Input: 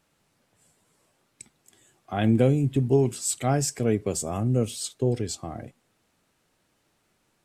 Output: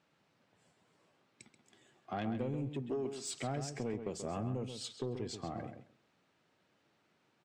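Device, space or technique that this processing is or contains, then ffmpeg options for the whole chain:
AM radio: -filter_complex "[0:a]asettb=1/sr,asplit=3[a][b][c];[a]atrim=end=2.694[d];[b]atrim=start=2.69:end=3.26,asetpts=PTS-STARTPTS,afade=t=in:d=0.004:c=qsin,afade=t=out:st=0.566:d=0.004:c=qsin,highpass=240[e];[c]atrim=start=3.256[f];[d][e]acrossfade=d=0.004:c1=hsin:c2=qsin[g];[g][f]acrossfade=d=0.004:c1=qsin:c2=hsin,highpass=120,lowpass=4.4k,acompressor=threshold=-31dB:ratio=4,asoftclip=type=tanh:threshold=-26dB,asplit=2[h][i];[i]adelay=133,lowpass=f=3.8k:p=1,volume=-8dB,asplit=2[j][k];[k]adelay=133,lowpass=f=3.8k:p=1,volume=0.16,asplit=2[l][m];[m]adelay=133,lowpass=f=3.8k:p=1,volume=0.16[n];[h][j][l][n]amix=inputs=4:normalize=0,volume=-3dB"

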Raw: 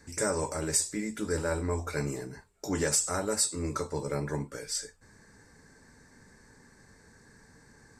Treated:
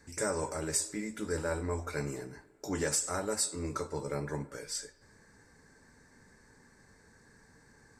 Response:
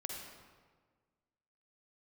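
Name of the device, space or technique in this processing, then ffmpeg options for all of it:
filtered reverb send: -filter_complex "[0:a]asplit=2[a][b];[b]highpass=270,lowpass=4k[c];[1:a]atrim=start_sample=2205[d];[c][d]afir=irnorm=-1:irlink=0,volume=-12dB[e];[a][e]amix=inputs=2:normalize=0,volume=-4dB"

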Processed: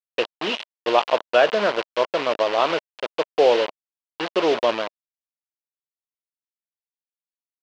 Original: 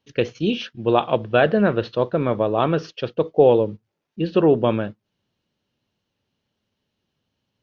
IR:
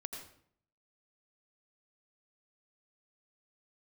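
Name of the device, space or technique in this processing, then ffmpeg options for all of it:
hand-held game console: -af "acrusher=bits=3:mix=0:aa=0.000001,highpass=450,equalizer=f=620:t=q:w=4:g=4,equalizer=f=1k:t=q:w=4:g=4,equalizer=f=2.9k:t=q:w=4:g=5,lowpass=f=4.6k:w=0.5412,lowpass=f=4.6k:w=1.3066,volume=-1dB"

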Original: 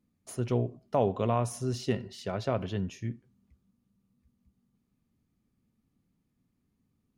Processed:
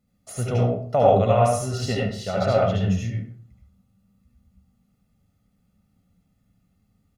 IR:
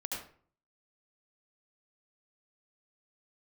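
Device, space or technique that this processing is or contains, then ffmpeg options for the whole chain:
microphone above a desk: -filter_complex "[0:a]aecho=1:1:1.5:0.67[a];[1:a]atrim=start_sample=2205[b];[a][b]afir=irnorm=-1:irlink=0,volume=6.5dB"

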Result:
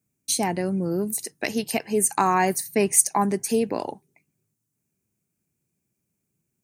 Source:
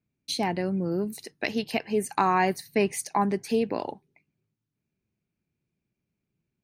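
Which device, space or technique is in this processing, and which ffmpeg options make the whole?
budget condenser microphone: -af "highpass=67,highshelf=f=5.5k:t=q:w=1.5:g=11.5,volume=2.5dB"

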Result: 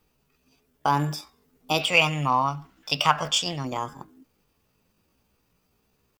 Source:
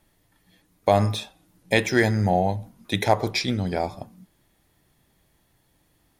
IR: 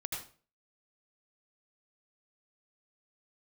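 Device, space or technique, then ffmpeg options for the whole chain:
chipmunk voice: -filter_complex "[0:a]asplit=3[a][b][c];[a]afade=t=out:st=1.8:d=0.02[d];[b]equalizer=f=250:t=o:w=1:g=-9,equalizer=f=500:t=o:w=1:g=3,equalizer=f=1k:t=o:w=1:g=5,equalizer=f=2k:t=o:w=1:g=9,equalizer=f=4k:t=o:w=1:g=4,equalizer=f=8k:t=o:w=1:g=-4,afade=t=in:st=1.8:d=0.02,afade=t=out:st=3.64:d=0.02[e];[c]afade=t=in:st=3.64:d=0.02[f];[d][e][f]amix=inputs=3:normalize=0,asetrate=62367,aresample=44100,atempo=0.707107,volume=-4dB"

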